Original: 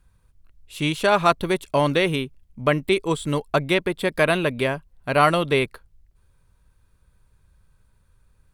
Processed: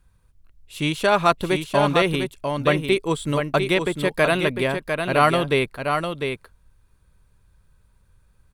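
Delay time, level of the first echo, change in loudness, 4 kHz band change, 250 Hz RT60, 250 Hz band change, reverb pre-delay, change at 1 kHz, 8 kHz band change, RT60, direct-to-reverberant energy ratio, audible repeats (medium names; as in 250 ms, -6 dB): 701 ms, -6.0 dB, +0.5 dB, +1.0 dB, no reverb, +1.0 dB, no reverb, +1.0 dB, +1.0 dB, no reverb, no reverb, 1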